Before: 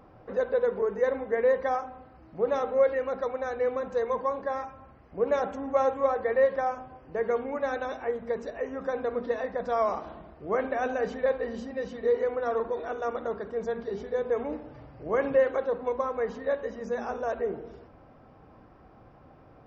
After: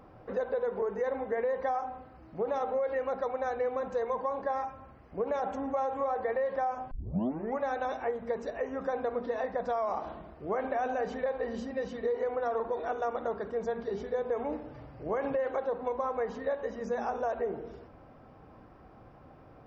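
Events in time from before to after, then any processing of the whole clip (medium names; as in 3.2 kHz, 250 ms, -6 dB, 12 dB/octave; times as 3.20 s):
6.91 s: tape start 0.67 s
whole clip: dynamic bell 800 Hz, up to +7 dB, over -41 dBFS, Q 2.1; peak limiter -18 dBFS; compression 3:1, threshold -29 dBFS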